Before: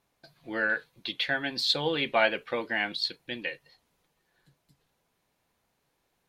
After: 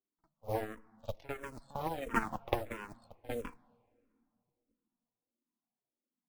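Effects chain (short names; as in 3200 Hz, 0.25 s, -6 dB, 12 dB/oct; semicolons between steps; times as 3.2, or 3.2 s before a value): HPF 140 Hz 12 dB/oct; bell 210 Hz +11 dB 0.85 oct; in parallel at -0.5 dB: limiter -19.5 dBFS, peak gain reduction 9 dB; on the sum: compressor 8:1, threshold -24 dBFS, peak gain reduction 9.5 dB; added harmonics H 3 -13 dB, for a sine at -12.5 dBFS; polynomial smoothing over 65 samples; modulation noise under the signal 24 dB; flange 0.7 Hz, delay 2.6 ms, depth 1.8 ms, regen +31%; added harmonics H 3 -16 dB, 5 -21 dB, 6 -9 dB, 7 -18 dB, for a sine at -19.5 dBFS; pre-echo 51 ms -17.5 dB; on a send at -23.5 dB: reverb RT60 2.6 s, pre-delay 3 ms; on the sum: endless phaser -1.5 Hz; gain +9 dB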